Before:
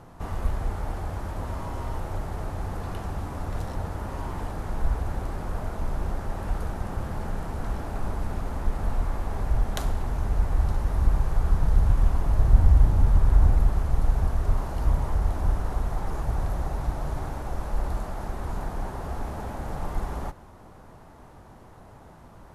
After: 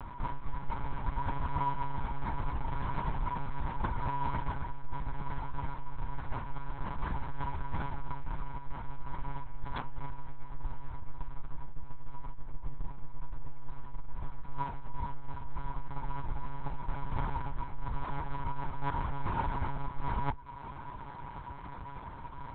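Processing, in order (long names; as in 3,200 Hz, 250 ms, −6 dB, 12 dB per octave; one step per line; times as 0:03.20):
running median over 15 samples
reverb reduction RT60 0.59 s
elliptic band-stop filter 170–840 Hz, stop band 40 dB
mains-hum notches 50/100/150 Hz
reversed playback
downward compressor 8 to 1, threshold −36 dBFS, peak gain reduction 24 dB
reversed playback
hollow resonant body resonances 570/960/2,200 Hz, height 10 dB, ringing for 60 ms
one-pitch LPC vocoder at 8 kHz 140 Hz
level +8.5 dB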